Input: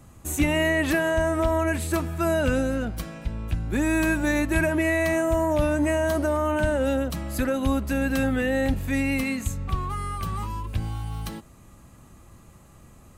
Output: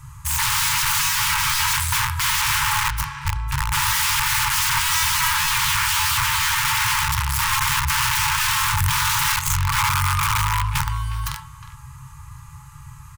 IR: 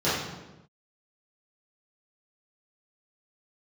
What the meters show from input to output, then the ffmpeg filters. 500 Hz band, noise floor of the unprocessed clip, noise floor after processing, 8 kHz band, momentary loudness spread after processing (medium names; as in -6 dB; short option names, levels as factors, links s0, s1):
under -40 dB, -51 dBFS, -41 dBFS, +16.5 dB, 6 LU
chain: -filter_complex "[0:a]asplit=2[s0][s1];[1:a]atrim=start_sample=2205,afade=t=out:st=0.13:d=0.01,atrim=end_sample=6174[s2];[s1][s2]afir=irnorm=-1:irlink=0,volume=0.141[s3];[s0][s3]amix=inputs=2:normalize=0,aeval=exprs='(mod(13.3*val(0)+1,2)-1)/13.3':c=same,equalizer=f=100:t=o:w=0.67:g=5,equalizer=f=630:t=o:w=0.67:g=12,equalizer=f=4000:t=o:w=0.67:g=-3,asplit=2[s4][s5];[s5]adelay=360,highpass=300,lowpass=3400,asoftclip=type=hard:threshold=0.075,volume=0.224[s6];[s4][s6]amix=inputs=2:normalize=0,afftfilt=real='re*(1-between(b*sr/4096,160,840))':imag='im*(1-between(b*sr/4096,160,840))':win_size=4096:overlap=0.75,volume=2.37"